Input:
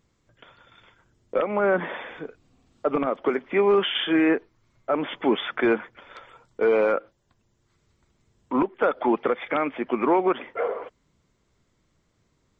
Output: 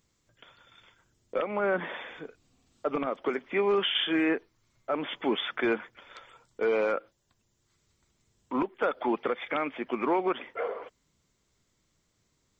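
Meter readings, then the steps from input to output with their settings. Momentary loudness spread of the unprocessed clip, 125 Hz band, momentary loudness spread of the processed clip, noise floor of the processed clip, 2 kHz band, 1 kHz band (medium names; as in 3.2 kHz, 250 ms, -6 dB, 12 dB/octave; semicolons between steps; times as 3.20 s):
13 LU, -6.5 dB, 13 LU, -74 dBFS, -4.0 dB, -5.5 dB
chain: treble shelf 3.3 kHz +11.5 dB; trim -6.5 dB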